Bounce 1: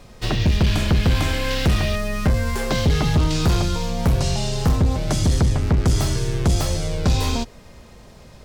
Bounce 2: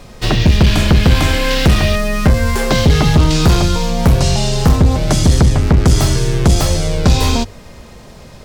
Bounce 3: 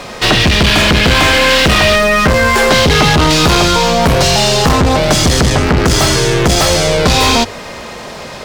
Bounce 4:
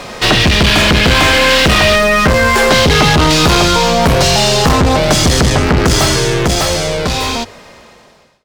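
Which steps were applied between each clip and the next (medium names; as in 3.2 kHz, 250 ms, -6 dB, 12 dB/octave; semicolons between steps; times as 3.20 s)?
hum notches 50/100 Hz; trim +8 dB
overdrive pedal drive 23 dB, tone 3.9 kHz, clips at -1 dBFS
fade out at the end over 2.53 s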